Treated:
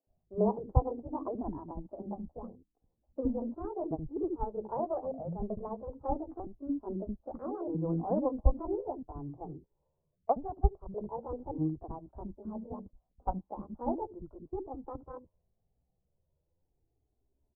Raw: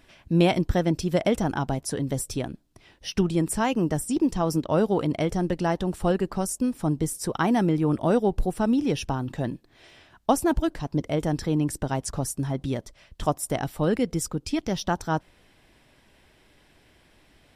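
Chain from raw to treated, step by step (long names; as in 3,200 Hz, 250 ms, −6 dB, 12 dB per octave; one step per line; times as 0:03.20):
pitch shifter swept by a sawtooth +10 semitones, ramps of 1,279 ms
Butterworth low-pass 940 Hz 36 dB per octave
low-shelf EQ 170 Hz +6 dB
multiband delay without the direct sound highs, lows 70 ms, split 330 Hz
flanger 0.19 Hz, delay 1.4 ms, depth 2.7 ms, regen −33%
low-pass that shuts in the quiet parts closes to 540 Hz, open at −28 dBFS
expander for the loud parts 1.5 to 1, over −50 dBFS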